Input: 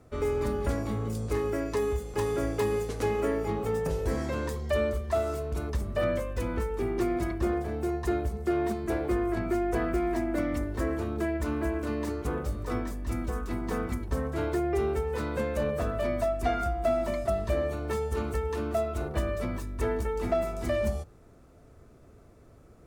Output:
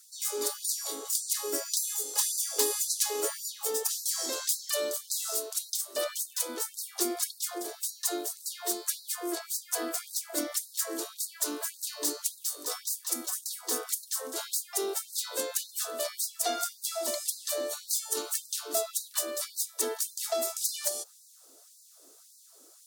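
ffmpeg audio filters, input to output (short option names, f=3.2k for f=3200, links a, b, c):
-af "aexciter=amount=14.6:drive=2.4:freq=3.5k,volume=13dB,asoftclip=hard,volume=-13dB,afftfilt=real='re*gte(b*sr/1024,240*pow(3900/240,0.5+0.5*sin(2*PI*1.8*pts/sr)))':imag='im*gte(b*sr/1024,240*pow(3900/240,0.5+0.5*sin(2*PI*1.8*pts/sr)))':win_size=1024:overlap=0.75,volume=-3.5dB"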